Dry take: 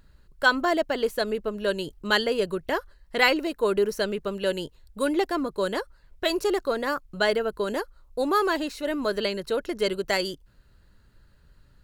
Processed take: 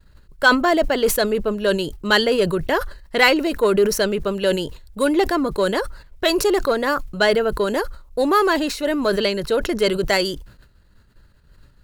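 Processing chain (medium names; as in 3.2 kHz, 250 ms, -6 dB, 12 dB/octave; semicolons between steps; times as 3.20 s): expander -50 dBFS; in parallel at -5 dB: saturation -21 dBFS, distortion -11 dB; on the sum: decay stretcher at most 100 dB/s; trim +3.5 dB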